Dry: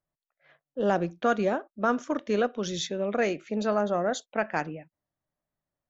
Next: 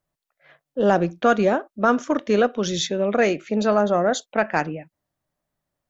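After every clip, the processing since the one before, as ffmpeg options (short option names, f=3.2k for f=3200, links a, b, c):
-af "acontrast=90"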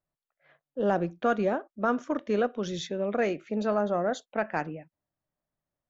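-af "highshelf=f=3.7k:g=-9,volume=-7.5dB"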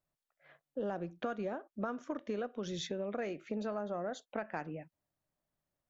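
-af "acompressor=threshold=-35dB:ratio=6"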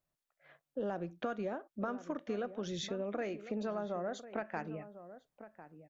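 -filter_complex "[0:a]asplit=2[a][b];[b]adelay=1050,volume=-13dB,highshelf=f=4k:g=-23.6[c];[a][c]amix=inputs=2:normalize=0"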